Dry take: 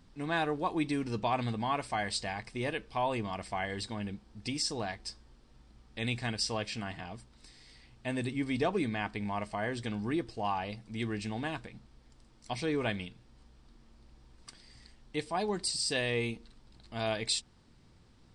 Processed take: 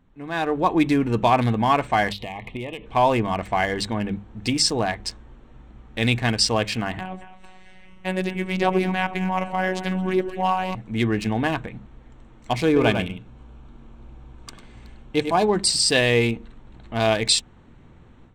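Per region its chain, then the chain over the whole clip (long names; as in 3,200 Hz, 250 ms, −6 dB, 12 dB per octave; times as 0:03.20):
0:02.12–0:02.86: high shelf with overshoot 4,800 Hz −13 dB, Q 3 + downward compressor 12 to 1, threshold −39 dBFS + Butterworth band-reject 1,500 Hz, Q 1.9
0:06.99–0:10.75: phases set to zero 186 Hz + echo with a time of its own for lows and highs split 760 Hz, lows 89 ms, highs 220 ms, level −11 dB
0:12.66–0:15.43: notch filter 1,900 Hz, Q 6 + single-tap delay 100 ms −6.5 dB
whole clip: adaptive Wiener filter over 9 samples; mains-hum notches 50/100/150/200 Hz; automatic gain control gain up to 13.5 dB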